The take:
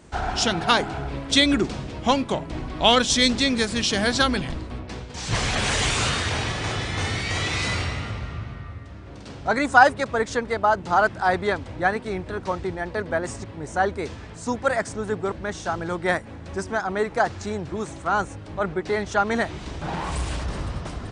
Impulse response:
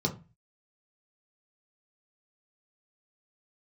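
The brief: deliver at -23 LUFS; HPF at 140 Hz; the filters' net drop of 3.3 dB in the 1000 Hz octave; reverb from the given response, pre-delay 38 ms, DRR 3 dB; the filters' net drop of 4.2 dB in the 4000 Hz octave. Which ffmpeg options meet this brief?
-filter_complex "[0:a]highpass=140,equalizer=f=1k:t=o:g=-4.5,equalizer=f=4k:t=o:g=-5,asplit=2[a][b];[1:a]atrim=start_sample=2205,adelay=38[c];[b][c]afir=irnorm=-1:irlink=0,volume=-10dB[d];[a][d]amix=inputs=2:normalize=0,volume=-0.5dB"

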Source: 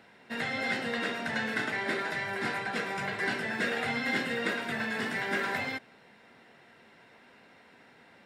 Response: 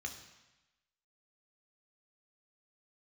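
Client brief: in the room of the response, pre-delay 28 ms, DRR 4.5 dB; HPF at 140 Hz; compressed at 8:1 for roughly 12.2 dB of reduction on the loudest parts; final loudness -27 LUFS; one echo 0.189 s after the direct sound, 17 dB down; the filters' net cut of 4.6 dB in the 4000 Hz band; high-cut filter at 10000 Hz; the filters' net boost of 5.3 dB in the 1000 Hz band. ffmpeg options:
-filter_complex "[0:a]highpass=140,lowpass=10k,equalizer=f=1k:t=o:g=7.5,equalizer=f=4k:t=o:g=-6.5,acompressor=threshold=-38dB:ratio=8,aecho=1:1:189:0.141,asplit=2[a][b];[1:a]atrim=start_sample=2205,adelay=28[c];[b][c]afir=irnorm=-1:irlink=0,volume=-3.5dB[d];[a][d]amix=inputs=2:normalize=0,volume=12dB"

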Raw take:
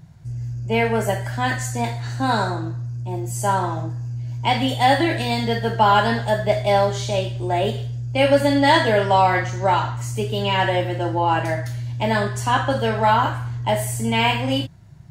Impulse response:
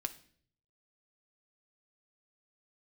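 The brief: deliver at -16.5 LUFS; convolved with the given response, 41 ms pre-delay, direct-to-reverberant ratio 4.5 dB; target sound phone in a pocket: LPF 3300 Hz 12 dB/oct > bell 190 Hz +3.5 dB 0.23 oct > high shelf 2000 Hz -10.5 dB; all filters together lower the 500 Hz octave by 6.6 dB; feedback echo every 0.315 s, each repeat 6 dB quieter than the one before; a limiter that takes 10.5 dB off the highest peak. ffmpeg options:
-filter_complex "[0:a]equalizer=f=500:t=o:g=-7.5,alimiter=limit=-16dB:level=0:latency=1,aecho=1:1:315|630|945|1260|1575|1890:0.501|0.251|0.125|0.0626|0.0313|0.0157,asplit=2[a][b];[1:a]atrim=start_sample=2205,adelay=41[c];[b][c]afir=irnorm=-1:irlink=0,volume=-4.5dB[d];[a][d]amix=inputs=2:normalize=0,lowpass=3.3k,equalizer=f=190:t=o:w=0.23:g=3.5,highshelf=f=2k:g=-10.5,volume=7dB"

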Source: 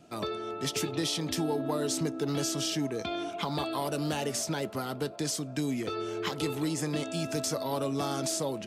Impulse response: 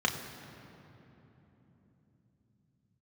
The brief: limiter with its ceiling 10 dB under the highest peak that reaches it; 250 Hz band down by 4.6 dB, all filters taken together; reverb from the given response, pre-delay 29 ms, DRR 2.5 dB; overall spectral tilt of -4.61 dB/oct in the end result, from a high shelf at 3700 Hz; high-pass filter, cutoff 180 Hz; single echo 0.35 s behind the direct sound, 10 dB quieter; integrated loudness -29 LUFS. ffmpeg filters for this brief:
-filter_complex "[0:a]highpass=180,equalizer=f=250:t=o:g=-5,highshelf=f=3.7k:g=-8.5,alimiter=level_in=7dB:limit=-24dB:level=0:latency=1,volume=-7dB,aecho=1:1:350:0.316,asplit=2[a][b];[1:a]atrim=start_sample=2205,adelay=29[c];[b][c]afir=irnorm=-1:irlink=0,volume=-12.5dB[d];[a][d]amix=inputs=2:normalize=0,volume=8dB"

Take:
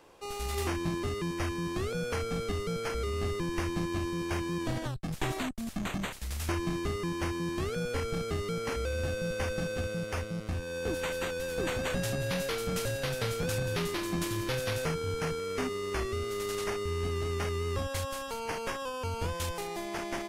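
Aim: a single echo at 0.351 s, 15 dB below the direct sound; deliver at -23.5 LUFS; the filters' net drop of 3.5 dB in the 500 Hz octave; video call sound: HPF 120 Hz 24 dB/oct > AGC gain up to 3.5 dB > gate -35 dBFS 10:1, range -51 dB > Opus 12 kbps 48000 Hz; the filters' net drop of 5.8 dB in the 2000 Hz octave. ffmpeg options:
-af "highpass=f=120:w=0.5412,highpass=f=120:w=1.3066,equalizer=f=500:t=o:g=-4,equalizer=f=2k:t=o:g=-7.5,aecho=1:1:351:0.178,dynaudnorm=m=3.5dB,agate=range=-51dB:threshold=-35dB:ratio=10,volume=12.5dB" -ar 48000 -c:a libopus -b:a 12k

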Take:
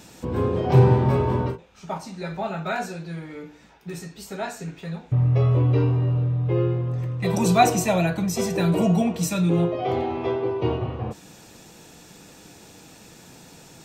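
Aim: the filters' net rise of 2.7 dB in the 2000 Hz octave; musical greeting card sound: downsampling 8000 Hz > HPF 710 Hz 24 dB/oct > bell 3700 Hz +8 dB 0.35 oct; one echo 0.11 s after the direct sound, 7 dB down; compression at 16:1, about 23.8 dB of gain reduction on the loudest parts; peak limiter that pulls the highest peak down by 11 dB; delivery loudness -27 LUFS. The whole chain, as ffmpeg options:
-af "equalizer=f=2k:t=o:g=3,acompressor=threshold=-34dB:ratio=16,alimiter=level_in=12dB:limit=-24dB:level=0:latency=1,volume=-12dB,aecho=1:1:110:0.447,aresample=8000,aresample=44100,highpass=f=710:w=0.5412,highpass=f=710:w=1.3066,equalizer=f=3.7k:t=o:w=0.35:g=8,volume=23.5dB"

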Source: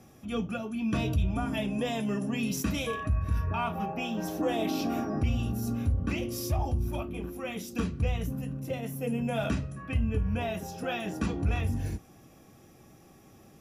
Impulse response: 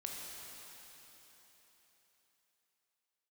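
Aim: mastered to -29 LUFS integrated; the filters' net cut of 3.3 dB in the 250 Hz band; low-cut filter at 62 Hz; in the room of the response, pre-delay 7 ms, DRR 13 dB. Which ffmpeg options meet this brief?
-filter_complex "[0:a]highpass=62,equalizer=f=250:t=o:g=-4,asplit=2[a][b];[1:a]atrim=start_sample=2205,adelay=7[c];[b][c]afir=irnorm=-1:irlink=0,volume=-12.5dB[d];[a][d]amix=inputs=2:normalize=0,volume=4.5dB"

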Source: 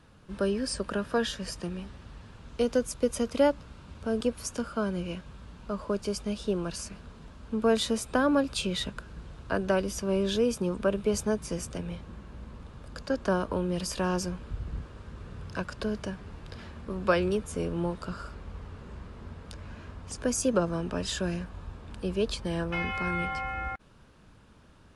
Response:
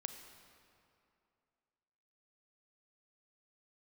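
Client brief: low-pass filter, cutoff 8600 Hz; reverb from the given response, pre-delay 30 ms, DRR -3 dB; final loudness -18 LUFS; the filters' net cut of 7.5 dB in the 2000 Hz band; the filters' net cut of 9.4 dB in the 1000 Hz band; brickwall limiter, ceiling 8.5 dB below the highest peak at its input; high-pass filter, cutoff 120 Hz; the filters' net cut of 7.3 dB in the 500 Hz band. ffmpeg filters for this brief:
-filter_complex "[0:a]highpass=120,lowpass=8.6k,equalizer=f=500:t=o:g=-6.5,equalizer=f=1k:t=o:g=-9,equalizer=f=2k:t=o:g=-6,alimiter=level_in=2dB:limit=-24dB:level=0:latency=1,volume=-2dB,asplit=2[a][b];[1:a]atrim=start_sample=2205,adelay=30[c];[b][c]afir=irnorm=-1:irlink=0,volume=5.5dB[d];[a][d]amix=inputs=2:normalize=0,volume=14.5dB"

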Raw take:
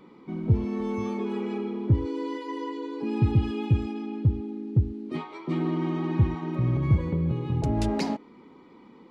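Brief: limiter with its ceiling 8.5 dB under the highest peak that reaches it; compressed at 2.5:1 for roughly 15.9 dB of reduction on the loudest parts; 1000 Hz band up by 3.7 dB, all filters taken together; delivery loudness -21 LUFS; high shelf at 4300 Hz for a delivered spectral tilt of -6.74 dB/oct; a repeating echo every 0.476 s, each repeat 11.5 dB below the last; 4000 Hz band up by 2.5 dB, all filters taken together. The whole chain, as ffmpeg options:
-af "equalizer=f=1k:t=o:g=4.5,equalizer=f=4k:t=o:g=7.5,highshelf=f=4.3k:g=-8,acompressor=threshold=-41dB:ratio=2.5,alimiter=level_in=9.5dB:limit=-24dB:level=0:latency=1,volume=-9.5dB,aecho=1:1:476|952|1428:0.266|0.0718|0.0194,volume=21dB"

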